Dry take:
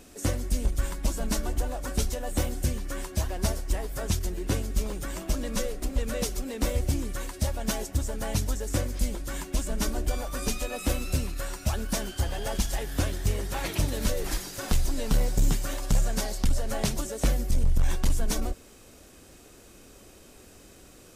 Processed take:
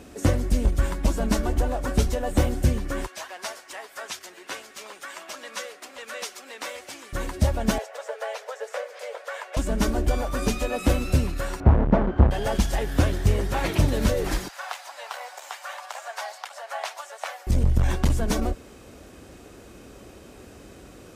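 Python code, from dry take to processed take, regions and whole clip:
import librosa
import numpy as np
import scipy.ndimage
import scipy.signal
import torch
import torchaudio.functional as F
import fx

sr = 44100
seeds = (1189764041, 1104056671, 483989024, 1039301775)

y = fx.chain(x, sr, fx.highpass(hz=1100.0, slope=12),
    fx.high_shelf(hz=11000.0, db=-8.0), at=(3.06, 7.13))
y = fx.chain(y, sr, fx.cheby_ripple_highpass(hz=450.0, ripple_db=3),
    fx.peak_eq(hz=14000.0, db=-11.5, octaves=1.8),
    fx.band_squash(depth_pct=70), at=(7.78, 9.57))
y = fx.chain(y, sr, fx.halfwave_hold(),
    fx.lowpass(hz=1200.0, slope=12), at=(11.6, 12.31))
y = fx.chain(y, sr, fx.steep_highpass(hz=710.0, slope=36),
    fx.high_shelf(hz=4000.0, db=-9.5),
    fx.quant_float(bits=4), at=(14.48, 17.47))
y = scipy.signal.sosfilt(scipy.signal.butter(2, 43.0, 'highpass', fs=sr, output='sos'), y)
y = fx.high_shelf(y, sr, hz=3700.0, db=-11.0)
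y = y * librosa.db_to_amplitude(7.5)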